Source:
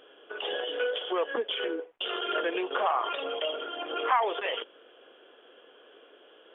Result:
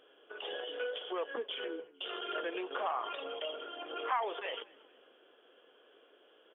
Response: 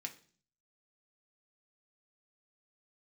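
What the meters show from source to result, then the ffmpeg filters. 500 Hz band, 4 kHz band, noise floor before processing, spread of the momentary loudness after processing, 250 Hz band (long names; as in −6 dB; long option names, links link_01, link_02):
−8.0 dB, can't be measured, −57 dBFS, 8 LU, −8.0 dB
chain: -filter_complex "[0:a]asplit=4[link_01][link_02][link_03][link_04];[link_02]adelay=228,afreqshift=-51,volume=-23.5dB[link_05];[link_03]adelay=456,afreqshift=-102,volume=-31.7dB[link_06];[link_04]adelay=684,afreqshift=-153,volume=-39.9dB[link_07];[link_01][link_05][link_06][link_07]amix=inputs=4:normalize=0,volume=-8dB"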